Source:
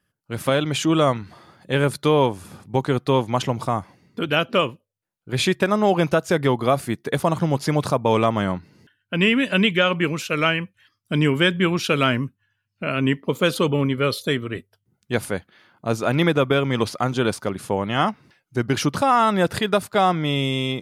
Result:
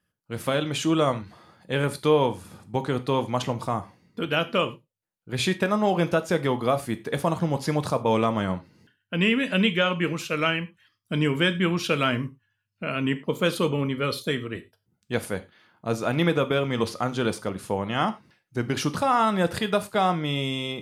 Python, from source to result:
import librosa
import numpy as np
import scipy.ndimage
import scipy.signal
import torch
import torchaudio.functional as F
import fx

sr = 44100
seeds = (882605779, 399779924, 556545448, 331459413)

y = fx.rev_gated(x, sr, seeds[0], gate_ms=130, shape='falling', drr_db=10.0)
y = y * 10.0 ** (-4.5 / 20.0)